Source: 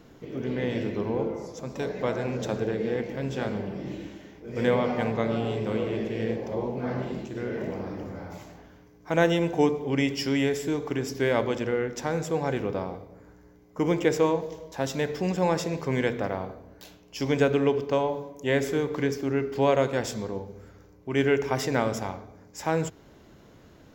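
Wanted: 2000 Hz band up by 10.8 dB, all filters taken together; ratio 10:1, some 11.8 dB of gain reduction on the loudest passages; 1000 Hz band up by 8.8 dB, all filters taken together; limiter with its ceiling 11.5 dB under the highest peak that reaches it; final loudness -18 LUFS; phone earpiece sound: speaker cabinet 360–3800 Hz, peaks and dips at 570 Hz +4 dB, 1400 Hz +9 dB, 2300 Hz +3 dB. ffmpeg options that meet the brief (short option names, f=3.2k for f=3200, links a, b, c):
-af "equalizer=f=1k:t=o:g=7.5,equalizer=f=2k:t=o:g=5.5,acompressor=threshold=-26dB:ratio=10,alimiter=limit=-23.5dB:level=0:latency=1,highpass=360,equalizer=f=570:t=q:w=4:g=4,equalizer=f=1.4k:t=q:w=4:g=9,equalizer=f=2.3k:t=q:w=4:g=3,lowpass=f=3.8k:w=0.5412,lowpass=f=3.8k:w=1.3066,volume=17dB"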